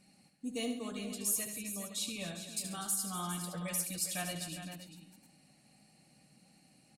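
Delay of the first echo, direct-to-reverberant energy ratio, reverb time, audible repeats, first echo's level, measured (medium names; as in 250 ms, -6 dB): 75 ms, no reverb, no reverb, 5, -8.5 dB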